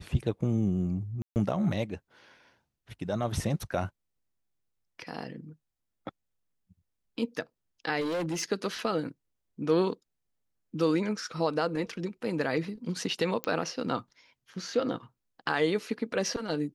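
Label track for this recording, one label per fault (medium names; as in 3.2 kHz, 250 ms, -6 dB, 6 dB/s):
1.220000	1.360000	dropout 139 ms
8.000000	8.430000	clipped -28 dBFS
13.440000	13.440000	pop -15 dBFS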